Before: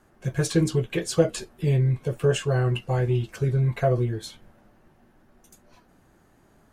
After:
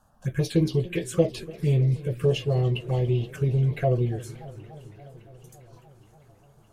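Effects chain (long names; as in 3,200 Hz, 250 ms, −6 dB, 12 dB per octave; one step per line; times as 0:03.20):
phaser swept by the level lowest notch 360 Hz, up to 1,500 Hz, full sweep at −20 dBFS
feedback echo with a high-pass in the loop 612 ms, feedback 70%, high-pass 420 Hz, level −22.5 dB
feedback echo with a swinging delay time 286 ms, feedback 76%, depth 179 cents, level −20 dB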